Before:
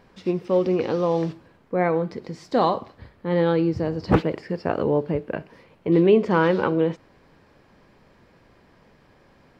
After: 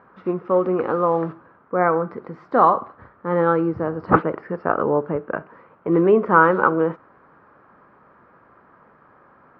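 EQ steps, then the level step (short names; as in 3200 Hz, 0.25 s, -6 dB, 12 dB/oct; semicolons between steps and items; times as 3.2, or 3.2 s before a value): HPF 180 Hz 6 dB/oct; synth low-pass 1300 Hz, resonance Q 4.5; +1.0 dB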